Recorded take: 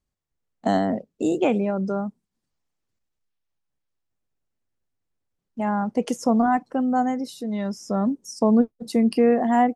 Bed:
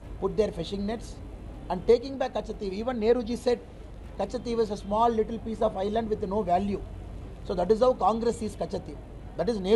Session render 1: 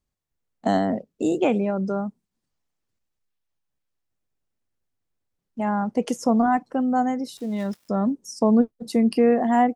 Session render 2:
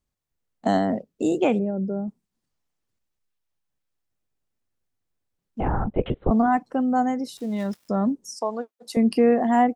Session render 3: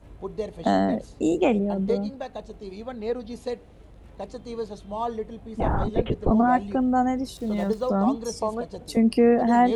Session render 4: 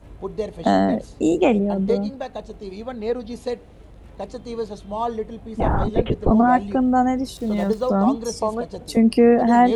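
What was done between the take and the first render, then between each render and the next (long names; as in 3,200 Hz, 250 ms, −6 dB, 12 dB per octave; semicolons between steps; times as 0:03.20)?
0:07.37–0:07.89: gap after every zero crossing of 0.097 ms
0:01.59–0:02.08: moving average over 39 samples; 0:05.60–0:06.31: linear-prediction vocoder at 8 kHz whisper; 0:08.35–0:08.97: high-pass filter 670 Hz
mix in bed −5.5 dB
level +4 dB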